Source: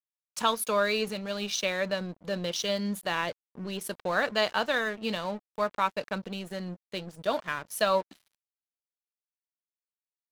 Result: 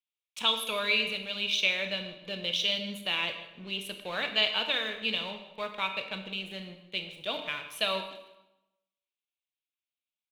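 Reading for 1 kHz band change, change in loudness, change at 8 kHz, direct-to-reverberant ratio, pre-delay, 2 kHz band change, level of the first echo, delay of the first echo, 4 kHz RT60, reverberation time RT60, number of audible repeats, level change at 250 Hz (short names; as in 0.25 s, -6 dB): -7.0 dB, 0.0 dB, -7.0 dB, 6.5 dB, 23 ms, +0.5 dB, -19.5 dB, 0.155 s, 0.80 s, 0.90 s, 2, -7.0 dB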